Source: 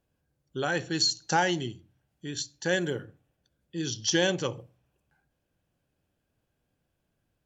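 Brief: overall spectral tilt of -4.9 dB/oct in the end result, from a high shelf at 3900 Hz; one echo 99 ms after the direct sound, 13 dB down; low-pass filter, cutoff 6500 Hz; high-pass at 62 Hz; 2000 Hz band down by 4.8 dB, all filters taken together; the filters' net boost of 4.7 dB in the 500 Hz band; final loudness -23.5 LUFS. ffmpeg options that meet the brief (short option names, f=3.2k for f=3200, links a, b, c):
-af "highpass=62,lowpass=6.5k,equalizer=f=500:t=o:g=6,equalizer=f=2k:t=o:g=-5.5,highshelf=f=3.9k:g=-7.5,aecho=1:1:99:0.224,volume=5dB"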